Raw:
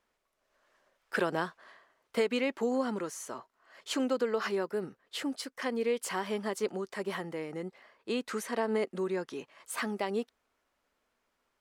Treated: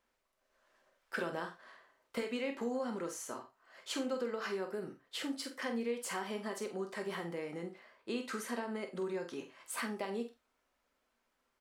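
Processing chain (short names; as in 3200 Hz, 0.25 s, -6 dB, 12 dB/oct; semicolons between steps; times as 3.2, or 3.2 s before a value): compressor 2.5:1, threshold -34 dBFS, peak gain reduction 7.5 dB; doubler 47 ms -8.5 dB; reverb, pre-delay 3 ms, DRR 6.5 dB; gain -3 dB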